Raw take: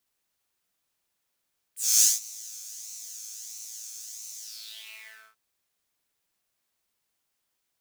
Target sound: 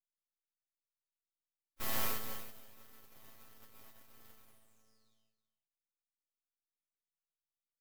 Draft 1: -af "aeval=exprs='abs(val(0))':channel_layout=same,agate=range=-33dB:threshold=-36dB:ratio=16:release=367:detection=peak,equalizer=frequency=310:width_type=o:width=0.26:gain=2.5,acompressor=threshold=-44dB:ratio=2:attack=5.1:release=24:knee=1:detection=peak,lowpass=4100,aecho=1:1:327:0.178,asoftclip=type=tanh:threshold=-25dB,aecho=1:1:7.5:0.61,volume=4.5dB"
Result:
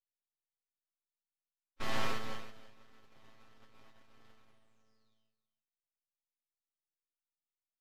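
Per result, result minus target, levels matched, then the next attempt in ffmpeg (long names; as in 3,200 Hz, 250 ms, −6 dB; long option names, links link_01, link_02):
downward compressor: peak gain reduction −4.5 dB; 4,000 Hz band +2.5 dB
-af "aeval=exprs='abs(val(0))':channel_layout=same,agate=range=-33dB:threshold=-36dB:ratio=16:release=367:detection=peak,equalizer=frequency=310:width_type=o:width=0.26:gain=2.5,acompressor=threshold=-53.5dB:ratio=2:attack=5.1:release=24:knee=1:detection=peak,lowpass=4100,aecho=1:1:327:0.178,asoftclip=type=tanh:threshold=-25dB,aecho=1:1:7.5:0.61,volume=4.5dB"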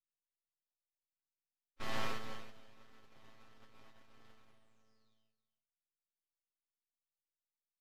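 4,000 Hz band +2.5 dB
-af "aeval=exprs='abs(val(0))':channel_layout=same,agate=range=-33dB:threshold=-36dB:ratio=16:release=367:detection=peak,equalizer=frequency=310:width_type=o:width=0.26:gain=2.5,acompressor=threshold=-53.5dB:ratio=2:attack=5.1:release=24:knee=1:detection=peak,aecho=1:1:327:0.178,asoftclip=type=tanh:threshold=-25dB,aecho=1:1:7.5:0.61,volume=4.5dB"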